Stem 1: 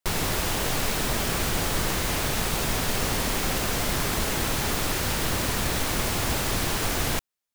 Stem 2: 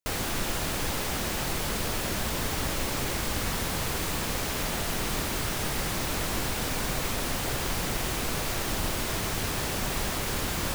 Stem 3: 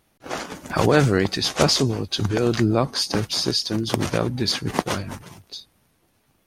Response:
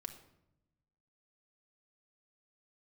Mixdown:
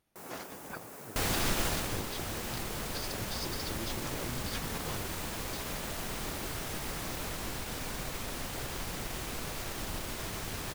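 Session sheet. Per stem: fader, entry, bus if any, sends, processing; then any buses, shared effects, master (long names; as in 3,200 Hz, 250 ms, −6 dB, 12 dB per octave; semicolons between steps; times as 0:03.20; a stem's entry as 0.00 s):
−14.0 dB, 0.10 s, no send, high-pass filter 240 Hz 12 dB per octave; parametric band 3,600 Hz −14 dB 1.8 octaves; soft clipping −25 dBFS, distortion −18 dB
0:01.66 0 dB → 0:02.02 −8 dB, 1.10 s, no send, no processing
−17.5 dB, 0.00 s, no send, compressor whose output falls as the input rises −25 dBFS, ratio −0.5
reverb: not used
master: transient designer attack −1 dB, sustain −5 dB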